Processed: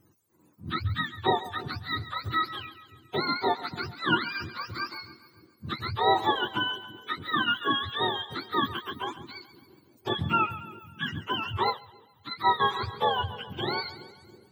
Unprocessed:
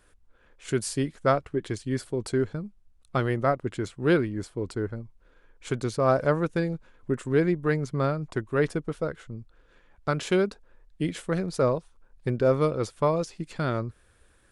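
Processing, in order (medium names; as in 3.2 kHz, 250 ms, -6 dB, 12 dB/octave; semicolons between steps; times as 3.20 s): spectrum inverted on a logarithmic axis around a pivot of 710 Hz; two-band feedback delay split 460 Hz, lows 329 ms, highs 138 ms, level -14.5 dB; 11.70–12.60 s: upward expansion 1.5:1, over -38 dBFS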